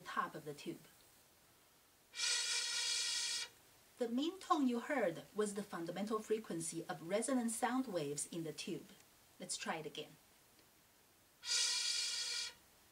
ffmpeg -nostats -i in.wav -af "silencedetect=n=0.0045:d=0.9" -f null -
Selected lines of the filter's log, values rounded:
silence_start: 0.76
silence_end: 2.15 | silence_duration: 1.39
silence_start: 10.04
silence_end: 11.44 | silence_duration: 1.40